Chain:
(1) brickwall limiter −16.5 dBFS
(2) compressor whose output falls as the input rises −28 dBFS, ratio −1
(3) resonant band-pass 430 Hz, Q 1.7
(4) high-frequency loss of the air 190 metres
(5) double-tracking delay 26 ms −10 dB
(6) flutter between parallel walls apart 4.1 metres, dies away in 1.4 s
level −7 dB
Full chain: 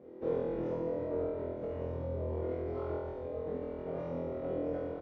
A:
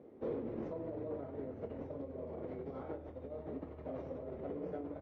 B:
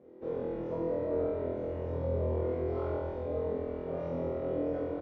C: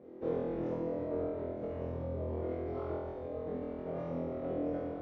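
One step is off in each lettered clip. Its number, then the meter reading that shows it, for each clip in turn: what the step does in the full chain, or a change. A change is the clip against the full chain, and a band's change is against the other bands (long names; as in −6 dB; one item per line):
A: 6, echo-to-direct ratio 5.5 dB to none audible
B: 2, change in integrated loudness +3.0 LU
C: 5, 250 Hz band +2.0 dB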